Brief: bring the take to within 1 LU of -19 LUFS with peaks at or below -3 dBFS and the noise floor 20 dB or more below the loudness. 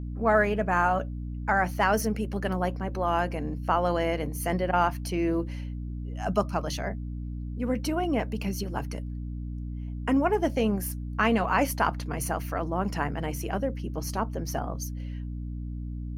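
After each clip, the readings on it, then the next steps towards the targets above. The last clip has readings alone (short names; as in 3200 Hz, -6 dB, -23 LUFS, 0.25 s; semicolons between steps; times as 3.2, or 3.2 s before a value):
hum 60 Hz; harmonics up to 300 Hz; hum level -32 dBFS; loudness -28.5 LUFS; peak -10.0 dBFS; loudness target -19.0 LUFS
-> notches 60/120/180/240/300 Hz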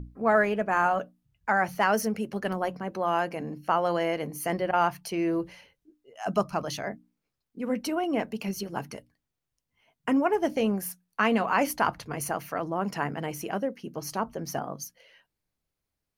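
hum none; loudness -28.5 LUFS; peak -10.0 dBFS; loudness target -19.0 LUFS
-> gain +9.5 dB; limiter -3 dBFS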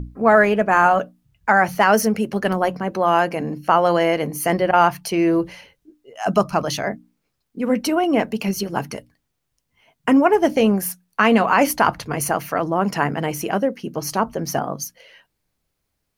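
loudness -19.5 LUFS; peak -3.0 dBFS; noise floor -75 dBFS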